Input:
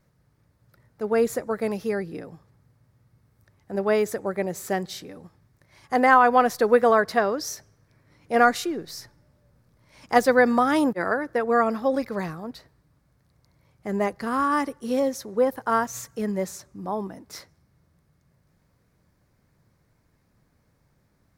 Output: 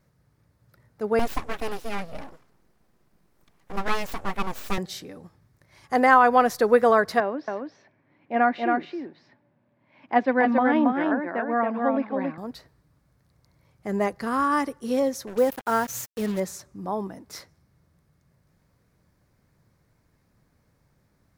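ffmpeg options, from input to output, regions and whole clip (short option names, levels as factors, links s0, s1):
-filter_complex "[0:a]asettb=1/sr,asplit=3[s0][s1][s2];[s0]atrim=end=1.194[s3];[s1]atrim=start=1.19:end=4.78,asetpts=PTS-STARTPTS,afade=t=in:d=0.004:c=qsin,afade=t=out:st=3.586:d=0.004:c=qsin,aecho=1:1:3.5:0.71,atrim=end_sample=158319,aeval=exprs='abs(val(0))':c=same[s4];[s2]atrim=start=4.776[s5];[s3][s4]acrossfade=d=0.004:c1=hsin:c2=qsin[s6];[s6][s5]acrossfade=d=0.004:c1=qsin:c2=hsin,asettb=1/sr,asplit=3[s7][s8][s9];[s7]atrim=end=7.204[s10];[s8]atrim=start=7.2:end=12.38,asetpts=PTS-STARTPTS,afade=t=in:d=0.004:c=qsin,afade=t=out:st=5.176:d=0.004:c=qsin,highpass=250,equalizer=f=260:t=q:w=4:g=5,equalizer=f=460:t=q:w=4:g=-9,equalizer=f=1300:t=q:w=4:g=-9,equalizer=f=1900:t=q:w=4:g=-3,lowpass=f=2700:w=0.5412,lowpass=f=2700:w=1.3066,aecho=1:1:276:0.668,atrim=end_sample=228438[s11];[s9]atrim=start=12.376[s12];[s10][s11]acrossfade=d=0.004:c1=hsin:c2=qsin[s13];[s13][s12]acrossfade=d=0.004:c1=qsin:c2=hsin,asettb=1/sr,asplit=3[s14][s15][s16];[s14]atrim=end=15.274[s17];[s15]atrim=start=15.27:end=16.4,asetpts=PTS-STARTPTS,afade=t=in:d=0.004:c=qsin,afade=t=out:st=1.126:d=0.004:c=qsin,equalizer=f=14000:t=o:w=0.61:g=7.5,bandreject=f=1100:w=6.7,acrusher=bits=5:mix=0:aa=0.5[s18];[s16]atrim=start=16.396[s19];[s17][s18]acrossfade=d=0.004:c1=hsin:c2=qsin[s20];[s20][s19]acrossfade=d=0.004:c1=qsin:c2=hsin"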